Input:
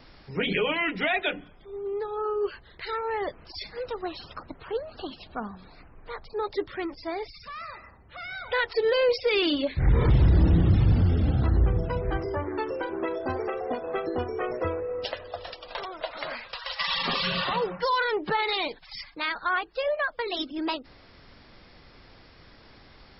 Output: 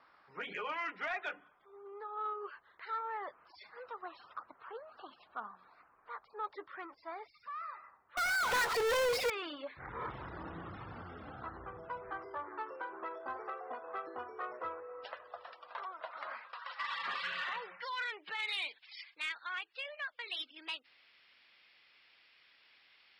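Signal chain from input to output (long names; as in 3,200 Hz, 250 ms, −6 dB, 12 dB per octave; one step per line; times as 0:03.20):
band-pass filter sweep 1,200 Hz → 2,700 Hz, 0:16.57–0:18.33
0:08.17–0:09.30: power curve on the samples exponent 0.35
soft clipping −24.5 dBFS, distortion −18 dB
level −2.5 dB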